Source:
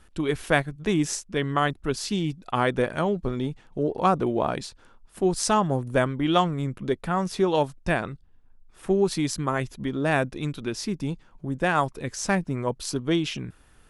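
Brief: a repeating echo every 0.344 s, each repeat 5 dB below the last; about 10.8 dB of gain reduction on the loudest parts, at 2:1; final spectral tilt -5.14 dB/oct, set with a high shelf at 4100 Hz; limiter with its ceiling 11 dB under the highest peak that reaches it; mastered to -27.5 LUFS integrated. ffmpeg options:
-af "highshelf=f=4.1k:g=-3.5,acompressor=threshold=-37dB:ratio=2,alimiter=level_in=4dB:limit=-24dB:level=0:latency=1,volume=-4dB,aecho=1:1:344|688|1032|1376|1720|2064|2408:0.562|0.315|0.176|0.0988|0.0553|0.031|0.0173,volume=10dB"

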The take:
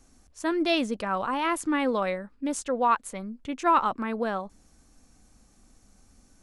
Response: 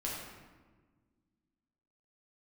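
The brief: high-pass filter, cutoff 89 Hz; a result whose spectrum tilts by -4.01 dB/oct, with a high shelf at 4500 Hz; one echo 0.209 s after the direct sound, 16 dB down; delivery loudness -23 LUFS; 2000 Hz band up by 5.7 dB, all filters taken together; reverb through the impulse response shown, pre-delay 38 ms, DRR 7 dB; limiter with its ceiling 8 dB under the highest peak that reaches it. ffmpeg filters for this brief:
-filter_complex "[0:a]highpass=89,equalizer=f=2k:t=o:g=8,highshelf=f=4.5k:g=-3.5,alimiter=limit=-17.5dB:level=0:latency=1,aecho=1:1:209:0.158,asplit=2[a][b];[1:a]atrim=start_sample=2205,adelay=38[c];[b][c]afir=irnorm=-1:irlink=0,volume=-10dB[d];[a][d]amix=inputs=2:normalize=0,volume=4.5dB"

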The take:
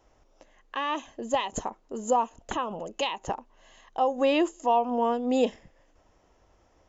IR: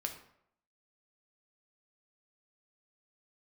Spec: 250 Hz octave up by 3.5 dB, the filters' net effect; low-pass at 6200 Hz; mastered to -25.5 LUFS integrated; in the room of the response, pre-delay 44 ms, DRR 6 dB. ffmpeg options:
-filter_complex "[0:a]lowpass=6.2k,equalizer=f=250:t=o:g=4,asplit=2[a][b];[1:a]atrim=start_sample=2205,adelay=44[c];[b][c]afir=irnorm=-1:irlink=0,volume=-6dB[d];[a][d]amix=inputs=2:normalize=0,volume=0.5dB"

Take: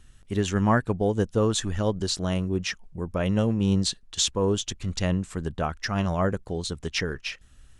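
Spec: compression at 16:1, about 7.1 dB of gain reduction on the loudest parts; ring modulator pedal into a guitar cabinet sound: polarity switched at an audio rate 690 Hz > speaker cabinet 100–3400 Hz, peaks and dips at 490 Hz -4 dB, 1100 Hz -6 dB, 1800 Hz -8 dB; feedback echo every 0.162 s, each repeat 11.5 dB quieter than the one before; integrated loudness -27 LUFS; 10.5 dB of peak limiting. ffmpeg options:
-af "acompressor=threshold=-24dB:ratio=16,alimiter=level_in=0.5dB:limit=-24dB:level=0:latency=1,volume=-0.5dB,aecho=1:1:162|324|486:0.266|0.0718|0.0194,aeval=exprs='val(0)*sgn(sin(2*PI*690*n/s))':c=same,highpass=100,equalizer=f=490:t=q:w=4:g=-4,equalizer=f=1.1k:t=q:w=4:g=-6,equalizer=f=1.8k:t=q:w=4:g=-8,lowpass=f=3.4k:w=0.5412,lowpass=f=3.4k:w=1.3066,volume=10dB"

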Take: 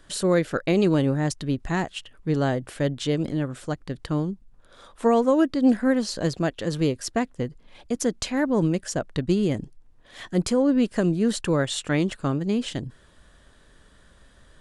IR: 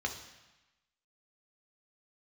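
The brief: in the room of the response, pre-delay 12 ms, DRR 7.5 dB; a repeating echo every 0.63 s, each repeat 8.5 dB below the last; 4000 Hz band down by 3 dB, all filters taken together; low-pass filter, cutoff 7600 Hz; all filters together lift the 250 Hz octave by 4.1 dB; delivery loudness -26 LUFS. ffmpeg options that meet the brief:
-filter_complex "[0:a]lowpass=7.6k,equalizer=f=250:t=o:g=5,equalizer=f=4k:t=o:g=-3.5,aecho=1:1:630|1260|1890|2520:0.376|0.143|0.0543|0.0206,asplit=2[a][b];[1:a]atrim=start_sample=2205,adelay=12[c];[b][c]afir=irnorm=-1:irlink=0,volume=-12dB[d];[a][d]amix=inputs=2:normalize=0,volume=-5dB"

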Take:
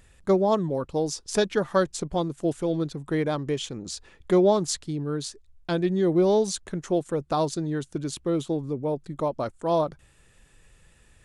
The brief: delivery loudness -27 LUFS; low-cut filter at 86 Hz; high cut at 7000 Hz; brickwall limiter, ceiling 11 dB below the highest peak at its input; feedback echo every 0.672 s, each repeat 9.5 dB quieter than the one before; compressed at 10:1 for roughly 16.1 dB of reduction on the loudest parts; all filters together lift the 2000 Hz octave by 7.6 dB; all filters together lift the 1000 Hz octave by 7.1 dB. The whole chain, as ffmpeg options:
-af "highpass=86,lowpass=7k,equalizer=f=1k:t=o:g=7.5,equalizer=f=2k:t=o:g=7,acompressor=threshold=-29dB:ratio=10,alimiter=level_in=1.5dB:limit=-24dB:level=0:latency=1,volume=-1.5dB,aecho=1:1:672|1344|2016|2688:0.335|0.111|0.0365|0.012,volume=9dB"

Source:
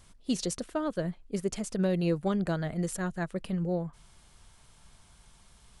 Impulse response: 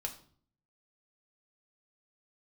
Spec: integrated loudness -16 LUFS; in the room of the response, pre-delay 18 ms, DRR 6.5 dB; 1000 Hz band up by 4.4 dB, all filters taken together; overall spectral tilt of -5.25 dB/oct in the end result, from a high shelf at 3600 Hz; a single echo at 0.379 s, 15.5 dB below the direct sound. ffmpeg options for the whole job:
-filter_complex "[0:a]equalizer=f=1k:t=o:g=5.5,highshelf=f=3.6k:g=5,aecho=1:1:379:0.168,asplit=2[a][b];[1:a]atrim=start_sample=2205,adelay=18[c];[b][c]afir=irnorm=-1:irlink=0,volume=-6.5dB[d];[a][d]amix=inputs=2:normalize=0,volume=14dB"

